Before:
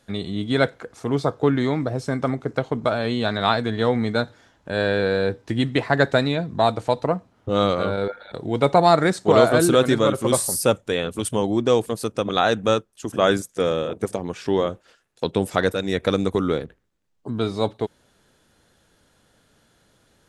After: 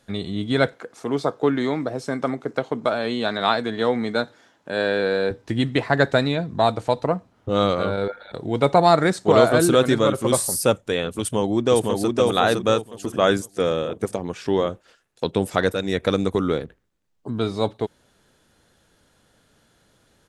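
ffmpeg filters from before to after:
-filter_complex "[0:a]asettb=1/sr,asplit=3[s0][s1][s2];[s0]atrim=end=0.744[s3];[s1]atrim=start=0.74:end=5.31,asetpts=PTS-STARTPTS,afade=t=in:d=0.004:c=qsin,afade=t=out:st=4.566:d=0.004:c=qsin,highpass=200[s4];[s2]atrim=start=5.306[s5];[s3][s4]acrossfade=d=0.004:c1=hsin:c2=qsin[s6];[s6][s5]acrossfade=d=0.004:c1=qsin:c2=hsin,asplit=2[s7][s8];[s8]afade=t=in:st=11.2:d=0.01,afade=t=out:st=12.09:d=0.01,aecho=0:1:510|1020|1530|2040:0.749894|0.224968|0.0674905|0.0202471[s9];[s7][s9]amix=inputs=2:normalize=0"

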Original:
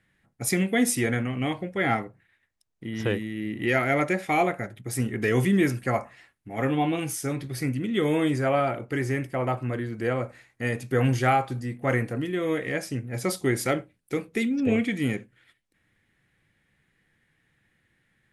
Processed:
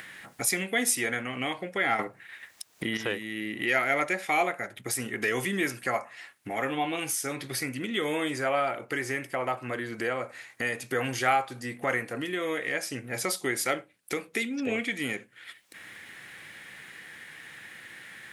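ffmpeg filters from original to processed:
-filter_complex "[0:a]asplit=3[s0][s1][s2];[s0]atrim=end=1.992[s3];[s1]atrim=start=1.988:end=2.972,asetpts=PTS-STARTPTS,volume=2.99[s4];[s2]atrim=start=2.968[s5];[s3][s4]acrossfade=d=0.004:c1=hsin:c2=hsin[s6];[s6][s5]acrossfade=d=0.004:c1=hsin:c2=hsin,highpass=f=940:p=1,acompressor=mode=upward:threshold=0.0447:ratio=2.5,volume=1.19"

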